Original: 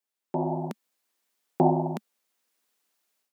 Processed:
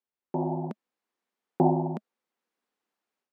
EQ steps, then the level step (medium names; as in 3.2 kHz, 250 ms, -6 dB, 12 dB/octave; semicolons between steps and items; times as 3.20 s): low-pass 1.1 kHz 6 dB/octave; band-stop 630 Hz, Q 12; 0.0 dB